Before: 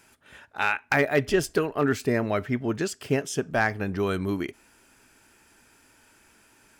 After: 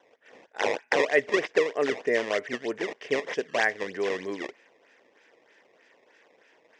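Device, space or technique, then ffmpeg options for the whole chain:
circuit-bent sampling toy: -af "acrusher=samples=17:mix=1:aa=0.000001:lfo=1:lforange=27.2:lforate=3.2,highpass=450,equalizer=f=480:t=q:w=4:g=8,equalizer=f=870:t=q:w=4:g=-4,equalizer=f=1.3k:t=q:w=4:g=-10,equalizer=f=1.9k:t=q:w=4:g=8,equalizer=f=4.2k:t=q:w=4:g=-9,lowpass=f=5.6k:w=0.5412,lowpass=f=5.6k:w=1.3066"

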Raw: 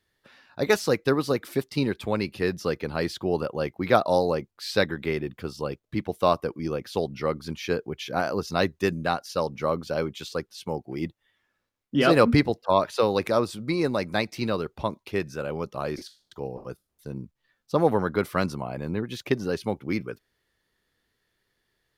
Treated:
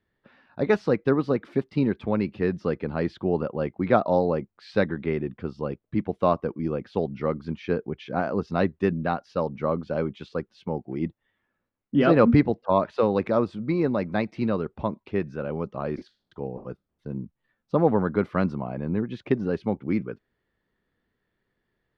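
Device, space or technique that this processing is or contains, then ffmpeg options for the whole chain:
phone in a pocket: -af "lowpass=3.2k,equalizer=f=210:t=o:w=0.89:g=5,highshelf=f=2.4k:g=-9"

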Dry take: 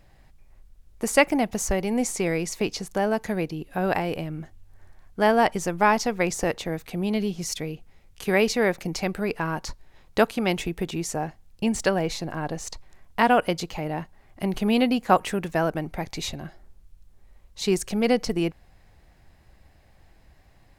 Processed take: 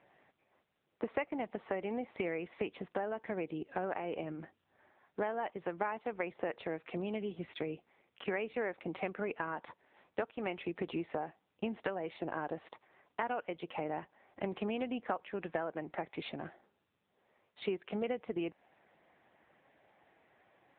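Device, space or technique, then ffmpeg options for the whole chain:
voicemail: -af "highpass=310,lowpass=2.8k,acompressor=threshold=-32dB:ratio=8" -ar 8000 -c:a libopencore_amrnb -b:a 6700

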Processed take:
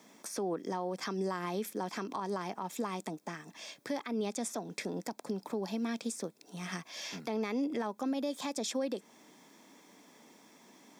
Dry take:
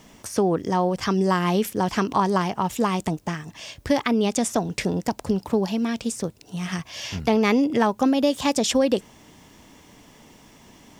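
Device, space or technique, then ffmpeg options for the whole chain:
PA system with an anti-feedback notch: -af "highpass=94,highpass=f=200:w=0.5412,highpass=f=200:w=1.3066,asuperstop=centerf=2900:order=4:qfactor=7.9,alimiter=limit=-18.5dB:level=0:latency=1:release=207,volume=-7.5dB"

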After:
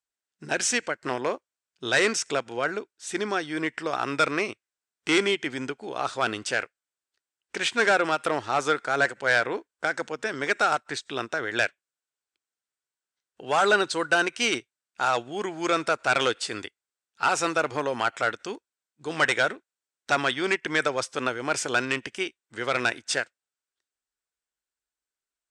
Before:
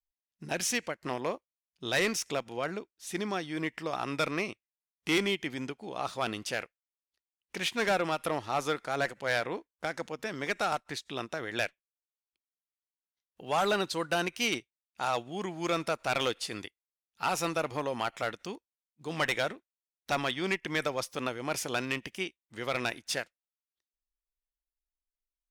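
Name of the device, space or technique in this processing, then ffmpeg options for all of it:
car door speaker: -af "highpass=97,equalizer=f=180:t=q:w=4:g=-9,equalizer=f=410:t=q:w=4:g=3,equalizer=f=1.5k:t=q:w=4:g=8,equalizer=f=8.1k:t=q:w=4:g=8,lowpass=f=8.4k:w=0.5412,lowpass=f=8.4k:w=1.3066,volume=4.5dB"

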